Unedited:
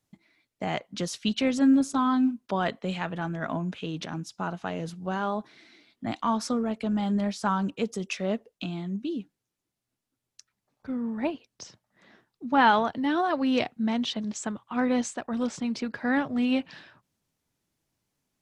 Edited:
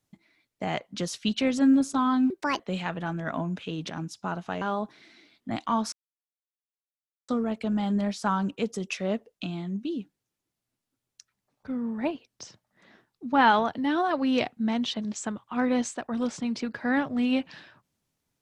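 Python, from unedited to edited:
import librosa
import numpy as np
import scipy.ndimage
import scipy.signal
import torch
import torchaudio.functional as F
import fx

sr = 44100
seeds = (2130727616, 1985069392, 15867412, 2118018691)

y = fx.edit(x, sr, fx.speed_span(start_s=2.3, length_s=0.45, speed=1.53),
    fx.cut(start_s=4.77, length_s=0.4),
    fx.insert_silence(at_s=6.48, length_s=1.36), tone=tone)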